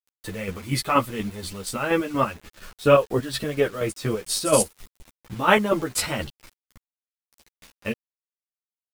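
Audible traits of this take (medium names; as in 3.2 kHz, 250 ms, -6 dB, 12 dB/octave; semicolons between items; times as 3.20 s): chopped level 4.2 Hz, depth 60%, duty 40%; a quantiser's noise floor 8-bit, dither none; a shimmering, thickened sound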